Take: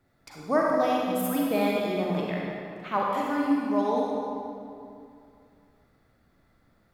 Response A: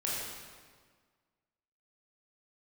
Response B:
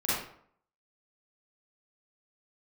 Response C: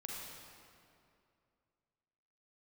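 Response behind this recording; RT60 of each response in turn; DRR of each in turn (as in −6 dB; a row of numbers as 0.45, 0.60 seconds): C; 1.6, 0.60, 2.5 seconds; −6.5, −10.5, −3.0 decibels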